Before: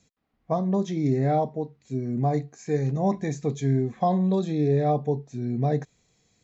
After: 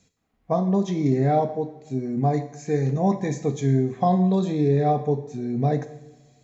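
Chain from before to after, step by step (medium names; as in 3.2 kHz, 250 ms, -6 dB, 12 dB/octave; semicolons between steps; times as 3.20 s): two-slope reverb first 0.78 s, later 2.2 s, from -18 dB, DRR 8 dB; trim +2 dB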